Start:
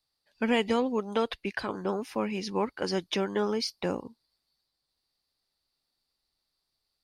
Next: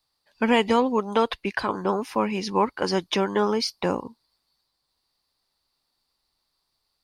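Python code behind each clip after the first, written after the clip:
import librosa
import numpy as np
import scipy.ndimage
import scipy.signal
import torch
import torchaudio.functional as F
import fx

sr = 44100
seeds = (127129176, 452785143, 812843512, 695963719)

y = fx.peak_eq(x, sr, hz=1000.0, db=6.5, octaves=0.58)
y = F.gain(torch.from_numpy(y), 5.0).numpy()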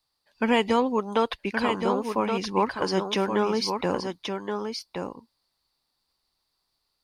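y = x + 10.0 ** (-6.0 / 20.0) * np.pad(x, (int(1122 * sr / 1000.0), 0))[:len(x)]
y = F.gain(torch.from_numpy(y), -2.0).numpy()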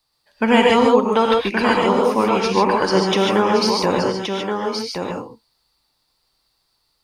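y = fx.rev_gated(x, sr, seeds[0], gate_ms=170, shape='rising', drr_db=-0.5)
y = F.gain(torch.from_numpy(y), 6.0).numpy()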